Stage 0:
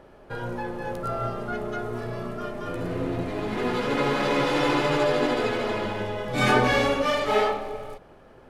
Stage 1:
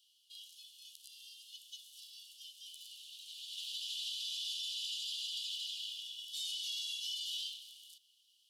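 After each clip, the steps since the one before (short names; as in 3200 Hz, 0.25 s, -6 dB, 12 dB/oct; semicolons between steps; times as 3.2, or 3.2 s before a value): Chebyshev high-pass 2900 Hz, order 8; limiter -34 dBFS, peak gain reduction 11 dB; gain +2.5 dB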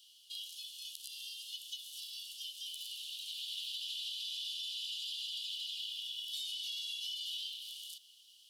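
dynamic EQ 6900 Hz, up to -7 dB, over -59 dBFS, Q 1.1; compressor, threshold -48 dBFS, peak gain reduction 9 dB; gain +9.5 dB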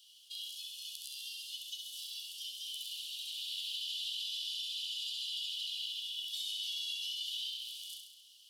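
on a send: flutter echo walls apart 11.5 m, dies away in 0.82 s; on the sum: attack slew limiter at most 560 dB/s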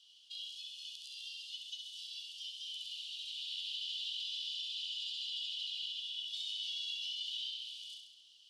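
air absorption 100 m; gain +1 dB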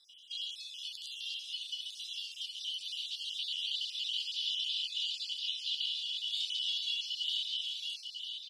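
random spectral dropouts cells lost 37%; echo 0.952 s -6.5 dB; gain +6 dB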